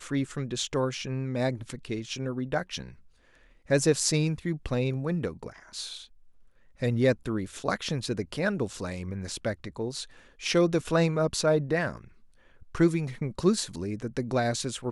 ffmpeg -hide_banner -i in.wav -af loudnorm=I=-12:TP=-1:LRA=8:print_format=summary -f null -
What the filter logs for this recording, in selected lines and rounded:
Input Integrated:    -29.0 LUFS
Input True Peak:      -9.7 dBTP
Input LRA:             3.3 LU
Input Threshold:     -39.6 LUFS